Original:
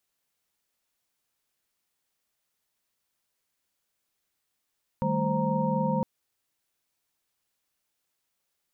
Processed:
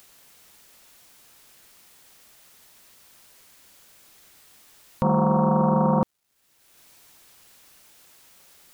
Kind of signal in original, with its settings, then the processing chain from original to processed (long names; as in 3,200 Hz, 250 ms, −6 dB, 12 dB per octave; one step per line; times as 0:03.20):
held notes D#3/G3/A3/C5/A#5 sine, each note −30 dBFS 1.01 s
in parallel at +1 dB: upward compression, threshold −35 dBFS
on the sum: bit reduction 11 bits
highs frequency-modulated by the lows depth 0.29 ms